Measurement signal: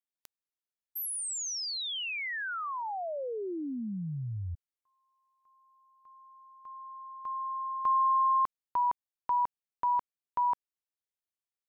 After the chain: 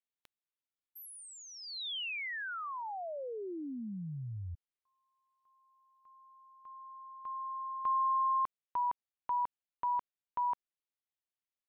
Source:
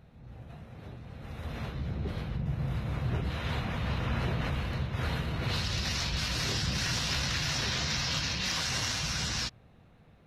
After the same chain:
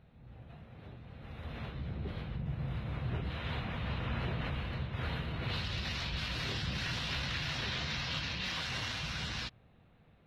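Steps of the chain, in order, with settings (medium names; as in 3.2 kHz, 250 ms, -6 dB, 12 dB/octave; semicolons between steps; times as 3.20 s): resonant high shelf 4.6 kHz -8.5 dB, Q 1.5; trim -5 dB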